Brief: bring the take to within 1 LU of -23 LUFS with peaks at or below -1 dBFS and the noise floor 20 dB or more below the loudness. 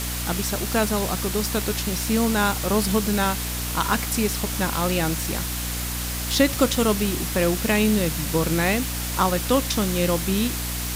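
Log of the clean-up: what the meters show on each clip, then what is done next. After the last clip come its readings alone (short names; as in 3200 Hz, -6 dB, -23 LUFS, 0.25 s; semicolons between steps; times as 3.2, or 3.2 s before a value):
hum 60 Hz; harmonics up to 300 Hz; hum level -28 dBFS; noise floor -28 dBFS; noise floor target -43 dBFS; loudness -22.5 LUFS; peak -3.5 dBFS; loudness target -23.0 LUFS
-> de-hum 60 Hz, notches 5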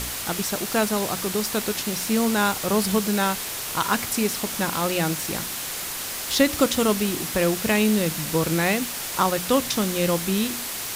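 hum none; noise floor -31 dBFS; noise floor target -43 dBFS
-> noise print and reduce 12 dB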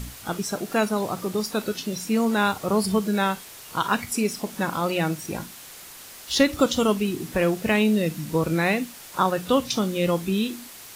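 noise floor -43 dBFS; noise floor target -45 dBFS
-> noise print and reduce 6 dB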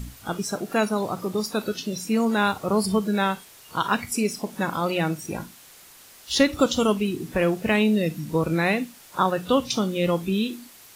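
noise floor -49 dBFS; loudness -24.5 LUFS; peak -5.0 dBFS; loudness target -23.0 LUFS
-> gain +1.5 dB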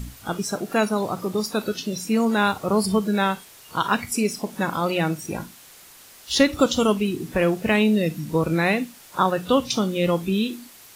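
loudness -23.0 LUFS; peak -3.5 dBFS; noise floor -48 dBFS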